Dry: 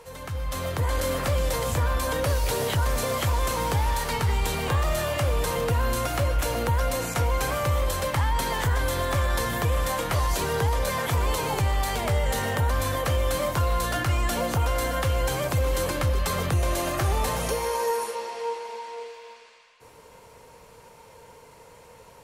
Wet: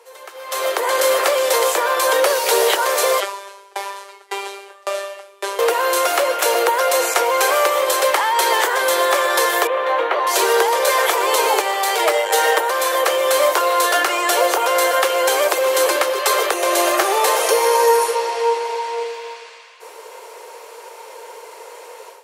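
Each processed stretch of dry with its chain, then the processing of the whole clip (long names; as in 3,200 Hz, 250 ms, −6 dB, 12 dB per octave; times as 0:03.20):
0:03.20–0:05.59: linear delta modulator 64 kbit/s, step −39.5 dBFS + phases set to zero 198 Hz + tremolo with a ramp in dB decaying 1.8 Hz, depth 31 dB
0:09.67–0:10.27: high-frequency loss of the air 360 metres + notch filter 5,000 Hz, Q 6.1
0:11.97–0:12.59: comb filter 6.4 ms, depth 85% + saturating transformer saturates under 180 Hz
whole clip: automatic gain control gain up to 13 dB; Butterworth high-pass 350 Hz 72 dB per octave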